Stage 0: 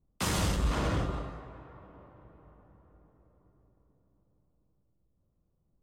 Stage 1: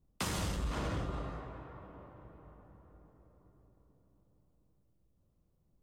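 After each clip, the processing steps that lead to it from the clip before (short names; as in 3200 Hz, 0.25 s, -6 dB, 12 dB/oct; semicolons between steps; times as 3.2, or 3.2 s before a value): compressor 4:1, threshold -35 dBFS, peak gain reduction 9 dB; gain +1 dB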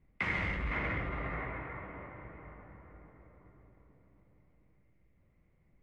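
limiter -35 dBFS, peak gain reduction 10 dB; synth low-pass 2100 Hz, resonance Q 11; gain +4.5 dB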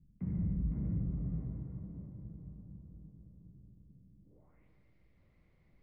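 low-pass sweep 180 Hz -> 4300 Hz, 4.2–4.71; gain +1 dB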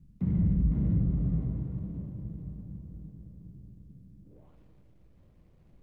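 median filter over 25 samples; gain +8.5 dB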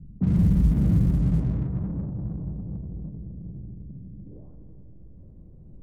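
G.711 law mismatch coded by mu; low-pass opened by the level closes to 320 Hz, open at -22 dBFS; gain +5.5 dB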